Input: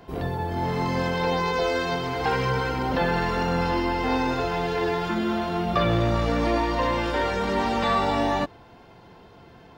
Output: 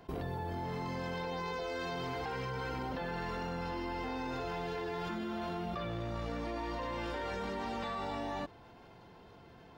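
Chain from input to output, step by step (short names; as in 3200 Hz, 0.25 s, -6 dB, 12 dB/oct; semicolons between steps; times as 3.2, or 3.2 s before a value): level quantiser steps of 18 dB; gain -2 dB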